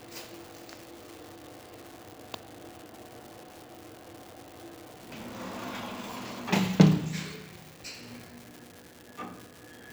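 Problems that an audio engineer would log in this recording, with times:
crackle 340/s -38 dBFS

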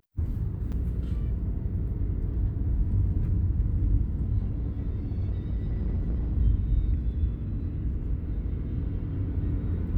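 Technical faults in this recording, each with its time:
0.72–0.73 gap 5.8 ms
4.38–6.38 clipped -24.5 dBFS

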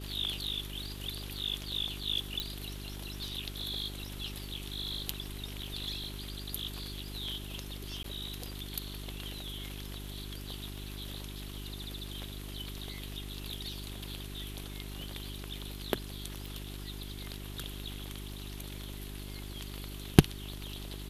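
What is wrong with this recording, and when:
crackle 12/s -46 dBFS
hum 50 Hz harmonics 8 -43 dBFS
2.4 pop -18 dBFS
8.03–8.04 gap 13 ms
16.46 pop

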